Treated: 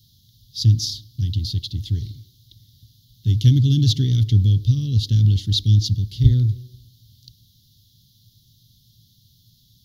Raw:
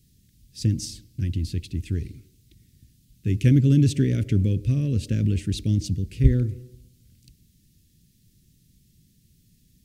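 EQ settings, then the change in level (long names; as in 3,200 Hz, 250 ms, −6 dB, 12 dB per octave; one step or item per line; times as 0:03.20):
parametric band 110 Hz +14 dB 0.57 octaves
high shelf with overshoot 2,400 Hz +12.5 dB, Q 3
phaser with its sweep stopped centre 2,500 Hz, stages 6
−4.0 dB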